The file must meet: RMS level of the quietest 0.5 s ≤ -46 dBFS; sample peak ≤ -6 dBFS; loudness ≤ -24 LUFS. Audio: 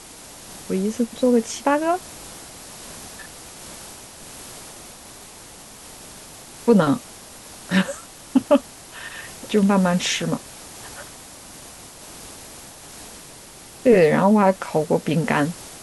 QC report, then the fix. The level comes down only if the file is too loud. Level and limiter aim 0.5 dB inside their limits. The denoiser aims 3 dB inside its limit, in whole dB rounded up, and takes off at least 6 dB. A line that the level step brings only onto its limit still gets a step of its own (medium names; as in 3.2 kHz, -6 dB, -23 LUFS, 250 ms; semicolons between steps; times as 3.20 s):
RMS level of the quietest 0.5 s -43 dBFS: fail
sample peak -5.0 dBFS: fail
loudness -20.0 LUFS: fail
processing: trim -4.5 dB